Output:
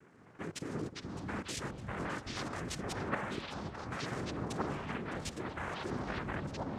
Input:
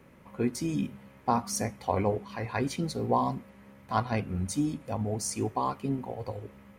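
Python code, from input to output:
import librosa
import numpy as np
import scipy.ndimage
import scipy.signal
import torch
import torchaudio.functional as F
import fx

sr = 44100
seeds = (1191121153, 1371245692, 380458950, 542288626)

p1 = fx.env_lowpass(x, sr, base_hz=1200.0, full_db=-23.5)
p2 = fx.dynamic_eq(p1, sr, hz=550.0, q=1.2, threshold_db=-39.0, ratio=4.0, max_db=4)
p3 = fx.level_steps(p2, sr, step_db=20)
p4 = fx.noise_vocoder(p3, sr, seeds[0], bands=3)
p5 = fx.echo_pitch(p4, sr, ms=169, semitones=-6, count=3, db_per_echo=-3.0)
y = p5 + fx.echo_alternate(p5, sr, ms=305, hz=1300.0, feedback_pct=77, wet_db=-12, dry=0)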